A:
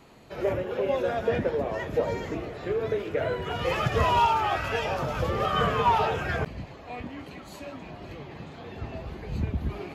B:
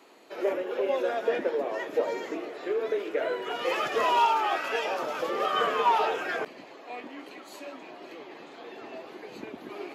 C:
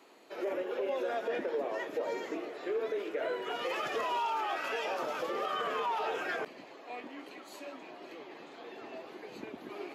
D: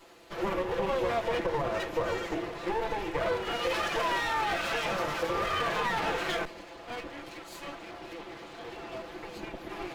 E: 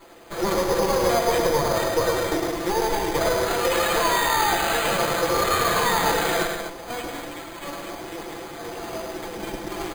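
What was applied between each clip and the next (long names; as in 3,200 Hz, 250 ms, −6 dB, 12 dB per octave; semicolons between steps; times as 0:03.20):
Chebyshev high-pass filter 310 Hz, order 3
brickwall limiter −22 dBFS, peak gain reduction 9.5 dB; level −3.5 dB
lower of the sound and its delayed copy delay 5.9 ms; level +6 dB
loudspeakers that aren't time-aligned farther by 36 metres −5 dB, 57 metres −11 dB, 84 metres −8 dB; bad sample-rate conversion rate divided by 8×, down filtered, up hold; level +7 dB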